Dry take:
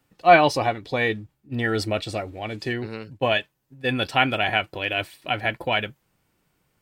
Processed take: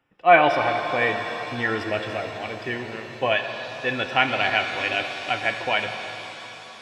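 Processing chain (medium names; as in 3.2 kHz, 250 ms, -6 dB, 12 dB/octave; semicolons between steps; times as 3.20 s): Savitzky-Golay filter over 25 samples; bass shelf 360 Hz -9.5 dB; pitch-shifted reverb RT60 3.8 s, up +7 st, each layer -8 dB, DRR 5.5 dB; trim +1.5 dB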